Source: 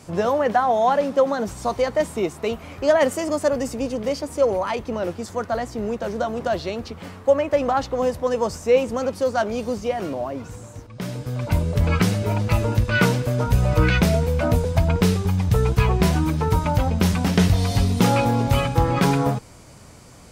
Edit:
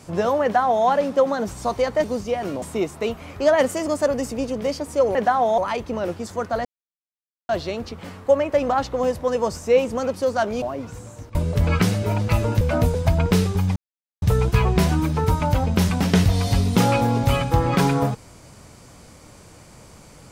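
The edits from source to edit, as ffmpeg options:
ffmpeg -i in.wav -filter_complex "[0:a]asplit=11[link_01][link_02][link_03][link_04][link_05][link_06][link_07][link_08][link_09][link_10][link_11];[link_01]atrim=end=2.042[link_12];[link_02]atrim=start=9.608:end=10.192[link_13];[link_03]atrim=start=2.038:end=4.572[link_14];[link_04]atrim=start=0.428:end=0.862[link_15];[link_05]atrim=start=4.568:end=5.64,asetpts=PTS-STARTPTS,afade=type=out:start_time=1.068:duration=0.004:curve=hsin[link_16];[link_06]atrim=start=5.64:end=6.48,asetpts=PTS-STARTPTS,volume=0[link_17];[link_07]atrim=start=6.48:end=9.612,asetpts=PTS-STARTPTS,afade=type=in:duration=0.004:curve=hsin[link_18];[link_08]atrim=start=10.188:end=10.922[link_19];[link_09]atrim=start=11.548:end=12.812[link_20];[link_10]atrim=start=14.308:end=15.46,asetpts=PTS-STARTPTS,afade=type=out:start_time=1.148:duration=0.004:curve=hsin,apad=pad_dur=0.46[link_21];[link_11]atrim=start=15.46,asetpts=PTS-STARTPTS,afade=type=in:duration=0.004:curve=hsin[link_22];[link_12][link_13]acrossfade=duration=0.004:curve1=hsin:curve2=hsin[link_23];[link_23][link_14]acrossfade=duration=0.004:curve1=hsin:curve2=hsin[link_24];[link_24][link_15]acrossfade=duration=0.004:curve1=hsin:curve2=hsin[link_25];[link_16][link_17][link_18]concat=n=3:v=0:a=1[link_26];[link_25][link_26]acrossfade=duration=0.004:curve1=hsin:curve2=hsin[link_27];[link_27][link_19]acrossfade=duration=0.004:curve1=hsin:curve2=hsin[link_28];[link_28][link_20]acrossfade=duration=0.004:curve1=hsin:curve2=hsin[link_29];[link_21][link_22]concat=n=2:v=0:a=1[link_30];[link_29][link_30]acrossfade=duration=0.004:curve1=hsin:curve2=hsin" out.wav

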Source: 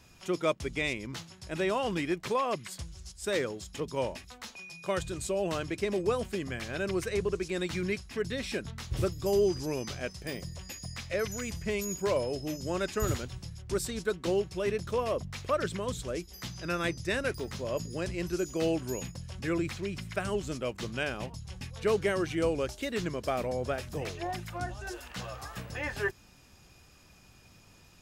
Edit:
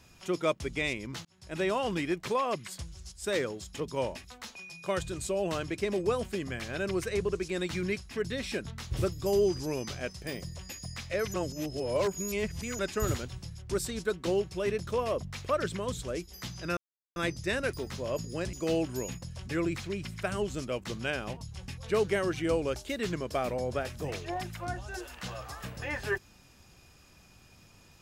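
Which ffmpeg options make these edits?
ffmpeg -i in.wav -filter_complex "[0:a]asplit=6[link_01][link_02][link_03][link_04][link_05][link_06];[link_01]atrim=end=1.25,asetpts=PTS-STARTPTS,afade=type=out:start_time=1.246:duration=0.004:curve=hsin[link_07];[link_02]atrim=start=1.25:end=11.342,asetpts=PTS-STARTPTS,afade=type=in:duration=0.36[link_08];[link_03]atrim=start=11.338:end=12.792,asetpts=PTS-STARTPTS,areverse[link_09];[link_04]atrim=start=12.788:end=16.77,asetpts=PTS-STARTPTS,afade=type=out:start_time=3.978:duration=0.004:curve=hsin,apad=pad_dur=0.39[link_10];[link_05]atrim=start=16.77:end=18.142,asetpts=PTS-STARTPTS,afade=type=in:duration=0.004:curve=hsin[link_11];[link_06]atrim=start=18.458[link_12];[link_07][link_08]concat=n=2:v=0:a=1[link_13];[link_13][link_09]acrossfade=duration=0.004:curve1=hsin:curve2=hsin[link_14];[link_10][link_11]concat=n=2:v=0:a=1[link_15];[link_14][link_15]acrossfade=duration=0.004:curve1=hsin:curve2=hsin[link_16];[link_16][link_12]acrossfade=duration=0.004:curve1=hsin:curve2=hsin" out.wav

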